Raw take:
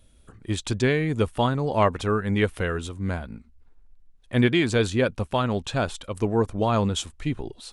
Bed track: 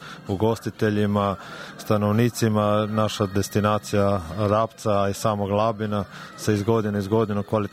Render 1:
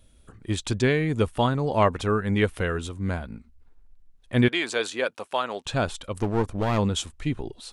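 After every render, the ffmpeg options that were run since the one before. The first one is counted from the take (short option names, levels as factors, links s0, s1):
-filter_complex "[0:a]asettb=1/sr,asplit=3[s0][s1][s2];[s0]atrim=end=4.484[s3];[s1]atrim=start=4.48:end=5.66,asetpts=PTS-STARTPTS,afade=t=in:d=0.004:c=qsin,afade=t=out:st=1.176:d=0.004:c=qsin,highpass=530[s4];[s2]atrim=start=5.656[s5];[s3][s4]acrossfade=d=0.004:c1=hsin:c2=qsin[s6];[s6][s5]acrossfade=d=0.004:c1=qsin:c2=hsin,asplit=3[s7][s8][s9];[s7]afade=t=out:st=6.2:d=0.02[s10];[s8]aeval=exprs='clip(val(0),-1,0.0422)':c=same,afade=t=in:st=6.2:d=0.02,afade=t=out:st=6.77:d=0.02[s11];[s9]afade=t=in:st=6.77:d=0.02[s12];[s10][s11][s12]amix=inputs=3:normalize=0"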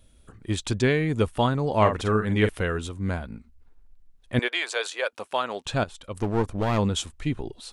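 -filter_complex "[0:a]asettb=1/sr,asplit=3[s0][s1][s2];[s0]atrim=end=1.764[s3];[s1]atrim=start=1.76:end=2.49,asetpts=PTS-STARTPTS,afade=t=in:d=0.004:c=qsin,afade=t=out:st=0.726:d=0.004:c=qsin,asplit=2[s4][s5];[s5]adelay=47,volume=0.398[s6];[s4][s6]amix=inputs=2:normalize=0,atrim=end_sample=32193[s7];[s2]atrim=start=2.486[s8];[s3][s7]acrossfade=d=0.004:c1=hsin:c2=qsin[s9];[s9][s8]acrossfade=d=0.004:c1=qsin:c2=hsin,asettb=1/sr,asplit=3[s10][s11][s12];[s10]atrim=end=4.394[s13];[s11]atrim=start=4.39:end=5.13,asetpts=PTS-STARTPTS,afade=t=in:d=0.004:c=qsin,afade=t=out:st=0.736:d=0.004:c=qsin,highpass=f=480:w=0.5412,highpass=f=480:w=1.3066[s14];[s12]atrim=start=5.126[s15];[s13][s14]acrossfade=d=0.004:c1=hsin:c2=qsin[s16];[s16][s15]acrossfade=d=0.004:c1=qsin:c2=hsin,asplit=2[s17][s18];[s17]atrim=end=5.84,asetpts=PTS-STARTPTS,afade=t=out:st=5.836:d=0.004:c=hsin:silence=0.223872[s19];[s18]atrim=start=5.84,asetpts=PTS-STARTPTS,afade=t=in:d=0.46:silence=0.223872[s20];[s19][s20]concat=n=2:v=0:a=1"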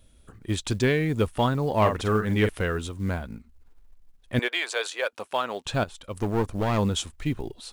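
-af "acrusher=bits=8:mode=log:mix=0:aa=0.000001,asoftclip=type=tanh:threshold=0.299"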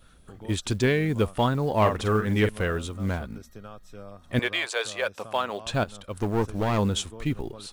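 -filter_complex "[1:a]volume=0.0708[s0];[0:a][s0]amix=inputs=2:normalize=0"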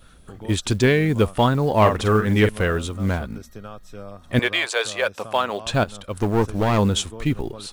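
-af "volume=1.88"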